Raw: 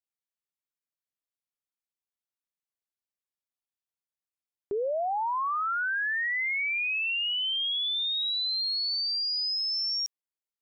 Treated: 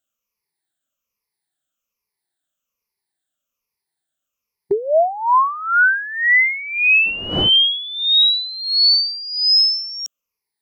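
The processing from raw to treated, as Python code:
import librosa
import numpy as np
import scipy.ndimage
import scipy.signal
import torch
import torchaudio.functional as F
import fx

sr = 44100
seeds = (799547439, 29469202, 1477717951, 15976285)

y = fx.spec_ripple(x, sr, per_octave=0.84, drift_hz=-1.2, depth_db=18)
y = fx.dmg_wind(y, sr, seeds[0], corner_hz=470.0, level_db=-32.0, at=(7.05, 7.48), fade=0.02)
y = y * librosa.db_to_amplitude(8.5)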